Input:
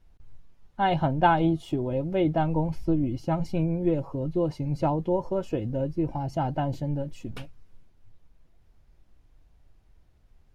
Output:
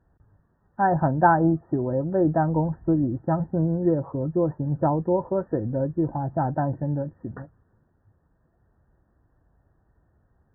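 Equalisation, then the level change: high-pass 74 Hz 12 dB/octave; brick-wall FIR low-pass 1.9 kHz; +3.0 dB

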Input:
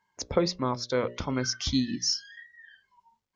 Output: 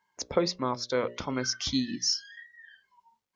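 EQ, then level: bass shelf 130 Hz -11 dB; 0.0 dB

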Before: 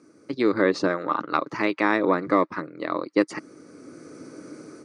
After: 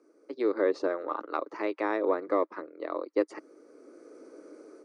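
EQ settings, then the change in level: high-pass 410 Hz 24 dB/octave; tilt shelf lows +9.5 dB, about 700 Hz; -5.0 dB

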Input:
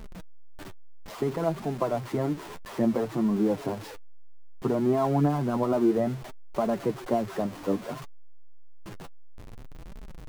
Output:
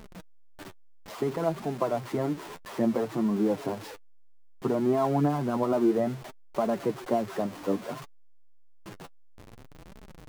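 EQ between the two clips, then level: bass shelf 84 Hz -11 dB; 0.0 dB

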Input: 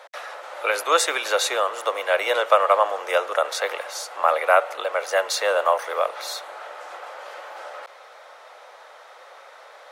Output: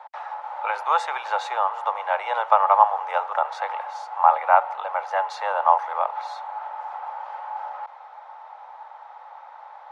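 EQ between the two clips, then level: resonant high-pass 860 Hz, resonance Q 9.7; tape spacing loss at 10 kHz 27 dB; treble shelf 7.2 kHz +4.5 dB; -4.5 dB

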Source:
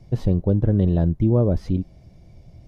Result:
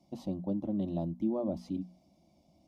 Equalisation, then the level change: high-pass 160 Hz 12 dB/octave; hum notches 60/120/180/240 Hz; static phaser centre 440 Hz, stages 6; -7.0 dB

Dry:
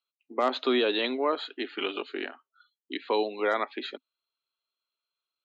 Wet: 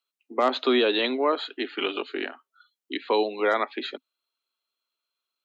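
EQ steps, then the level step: steep high-pass 180 Hz; +3.5 dB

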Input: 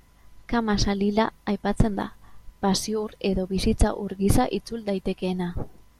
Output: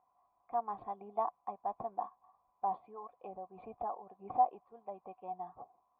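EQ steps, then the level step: cascade formant filter a; high-pass 410 Hz 6 dB/octave; band-stop 640 Hz, Q 16; +2.0 dB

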